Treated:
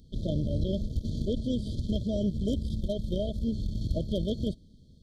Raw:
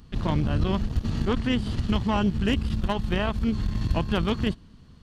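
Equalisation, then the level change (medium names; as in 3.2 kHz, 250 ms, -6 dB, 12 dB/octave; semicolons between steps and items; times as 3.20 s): dynamic bell 610 Hz, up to +6 dB, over -43 dBFS, Q 3.1; brick-wall FIR band-stop 660–3100 Hz; -5.0 dB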